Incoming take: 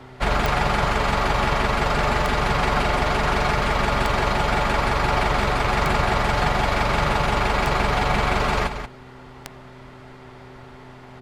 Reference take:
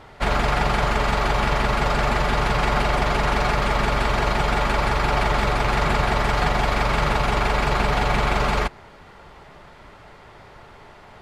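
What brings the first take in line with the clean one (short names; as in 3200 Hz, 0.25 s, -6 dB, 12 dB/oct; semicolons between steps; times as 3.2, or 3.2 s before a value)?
de-click; de-hum 127.6 Hz, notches 3; inverse comb 0.183 s -9.5 dB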